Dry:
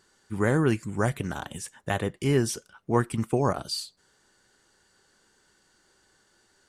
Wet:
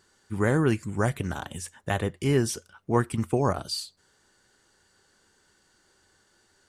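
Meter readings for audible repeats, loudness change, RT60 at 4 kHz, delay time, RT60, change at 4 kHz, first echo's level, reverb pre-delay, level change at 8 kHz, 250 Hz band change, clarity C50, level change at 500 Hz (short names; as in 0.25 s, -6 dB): none, 0.0 dB, none, none, none, 0.0 dB, none, none, 0.0 dB, 0.0 dB, none, 0.0 dB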